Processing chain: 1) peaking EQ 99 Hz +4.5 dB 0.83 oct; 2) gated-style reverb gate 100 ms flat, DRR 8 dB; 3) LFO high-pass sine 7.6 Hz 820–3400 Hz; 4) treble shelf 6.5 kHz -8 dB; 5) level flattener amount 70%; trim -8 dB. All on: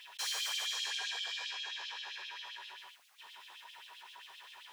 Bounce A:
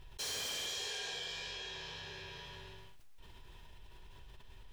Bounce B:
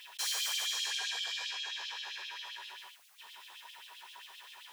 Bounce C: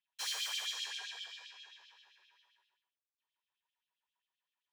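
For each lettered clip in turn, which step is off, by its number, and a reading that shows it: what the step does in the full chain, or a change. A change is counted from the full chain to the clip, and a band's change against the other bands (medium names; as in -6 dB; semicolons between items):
3, 500 Hz band +13.0 dB; 4, 8 kHz band +3.5 dB; 5, crest factor change +4.0 dB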